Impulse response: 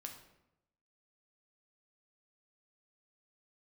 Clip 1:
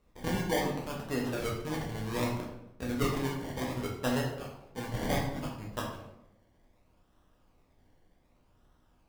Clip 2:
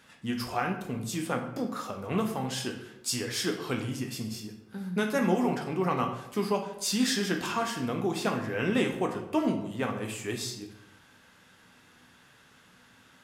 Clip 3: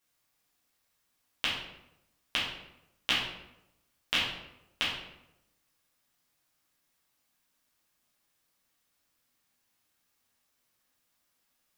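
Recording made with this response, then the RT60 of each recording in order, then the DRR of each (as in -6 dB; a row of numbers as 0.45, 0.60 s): 2; 0.85, 0.85, 0.85 s; -3.0, 2.5, -7.5 dB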